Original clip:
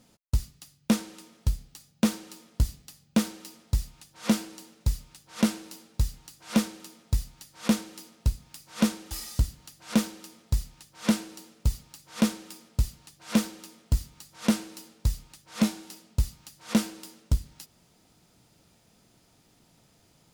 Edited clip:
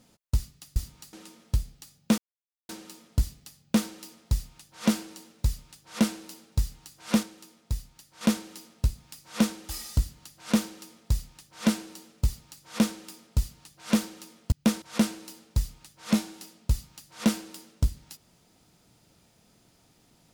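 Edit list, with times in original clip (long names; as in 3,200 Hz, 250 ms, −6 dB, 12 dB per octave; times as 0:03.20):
0:00.76–0:01.06: swap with 0:13.94–0:14.31
0:02.11: splice in silence 0.51 s
0:06.65–0:07.63: clip gain −4.5 dB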